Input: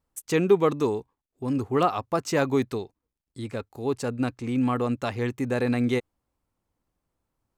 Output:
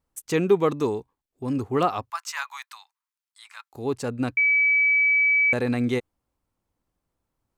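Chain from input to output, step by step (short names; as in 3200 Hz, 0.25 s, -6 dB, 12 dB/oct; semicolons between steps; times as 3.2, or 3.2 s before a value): 2.1–3.73 steep high-pass 920 Hz 48 dB/oct; 4.37–5.53 bleep 2290 Hz -16.5 dBFS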